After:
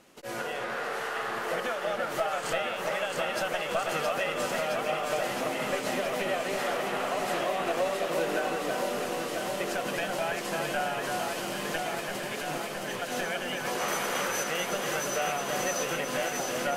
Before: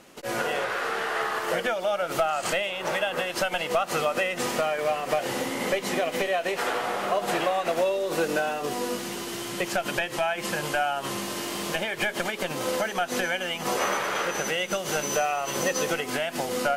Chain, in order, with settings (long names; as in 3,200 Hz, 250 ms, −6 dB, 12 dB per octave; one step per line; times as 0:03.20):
0:11.81–0:13.02: compressor whose output falls as the input rises −34 dBFS
0:13.88–0:14.44: parametric band 12,000 Hz +11.5 dB 2 octaves
delay that swaps between a low-pass and a high-pass 334 ms, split 2,200 Hz, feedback 89%, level −3 dB
level −6.5 dB